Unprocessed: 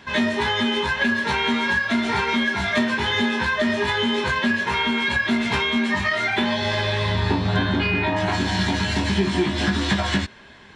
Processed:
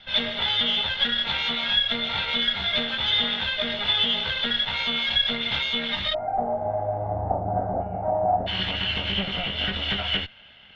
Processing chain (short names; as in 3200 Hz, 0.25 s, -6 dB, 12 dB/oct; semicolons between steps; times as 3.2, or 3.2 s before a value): minimum comb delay 1.4 ms; ladder low-pass 3600 Hz, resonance 80%, from 6.13 s 770 Hz, from 8.46 s 3200 Hz; gain +4.5 dB